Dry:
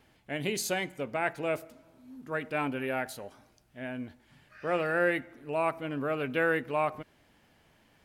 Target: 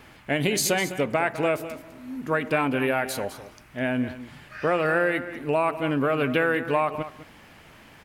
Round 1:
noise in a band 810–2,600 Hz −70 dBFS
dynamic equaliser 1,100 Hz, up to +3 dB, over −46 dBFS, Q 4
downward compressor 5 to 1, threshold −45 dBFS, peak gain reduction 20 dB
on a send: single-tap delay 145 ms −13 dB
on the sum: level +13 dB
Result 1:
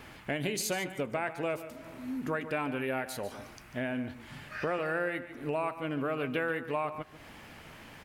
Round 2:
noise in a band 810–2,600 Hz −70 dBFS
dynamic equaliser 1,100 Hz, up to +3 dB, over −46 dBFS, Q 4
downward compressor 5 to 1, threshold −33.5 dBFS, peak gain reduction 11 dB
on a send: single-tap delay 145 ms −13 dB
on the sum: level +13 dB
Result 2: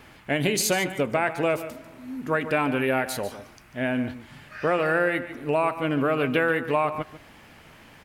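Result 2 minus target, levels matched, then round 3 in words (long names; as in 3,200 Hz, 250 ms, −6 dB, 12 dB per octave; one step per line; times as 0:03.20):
echo 60 ms early
noise in a band 810–2,600 Hz −70 dBFS
dynamic equaliser 1,100 Hz, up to +3 dB, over −46 dBFS, Q 4
downward compressor 5 to 1, threshold −33.5 dBFS, peak gain reduction 11 dB
on a send: single-tap delay 205 ms −13 dB
on the sum: level +13 dB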